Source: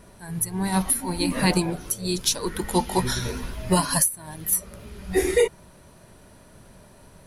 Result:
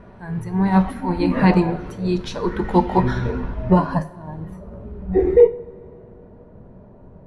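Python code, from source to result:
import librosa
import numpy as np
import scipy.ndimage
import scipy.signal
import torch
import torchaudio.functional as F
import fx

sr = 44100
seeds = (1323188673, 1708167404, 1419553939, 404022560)

y = fx.filter_sweep_lowpass(x, sr, from_hz=1700.0, to_hz=680.0, start_s=2.79, end_s=4.62, q=0.72)
y = fx.rev_double_slope(y, sr, seeds[0], early_s=0.44, late_s=3.5, knee_db=-19, drr_db=9.5)
y = F.gain(torch.from_numpy(y), 6.0).numpy()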